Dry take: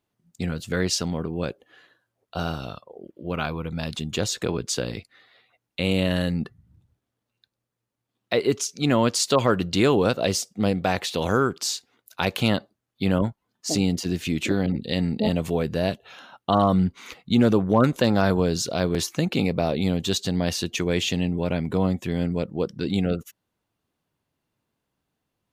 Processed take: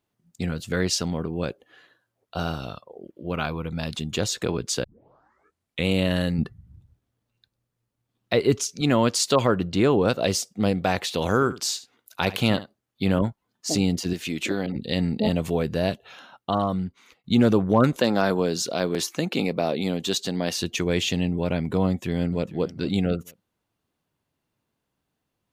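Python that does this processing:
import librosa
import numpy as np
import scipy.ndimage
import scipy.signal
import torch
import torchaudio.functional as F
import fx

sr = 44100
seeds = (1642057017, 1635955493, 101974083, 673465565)

y = fx.low_shelf(x, sr, hz=130.0, db=12.0, at=(6.38, 8.81))
y = fx.high_shelf(y, sr, hz=2400.0, db=-9.0, at=(9.47, 10.08))
y = fx.echo_single(y, sr, ms=72, db=-15.5, at=(11.34, 13.19))
y = fx.highpass(y, sr, hz=310.0, slope=6, at=(14.13, 14.76))
y = fx.highpass(y, sr, hz=200.0, slope=12, at=(17.97, 20.54))
y = fx.echo_throw(y, sr, start_s=21.87, length_s=0.63, ms=450, feedback_pct=25, wet_db=-17.0)
y = fx.edit(y, sr, fx.tape_start(start_s=4.84, length_s=1.03),
    fx.fade_out_to(start_s=16.08, length_s=1.16, floor_db=-21.0), tone=tone)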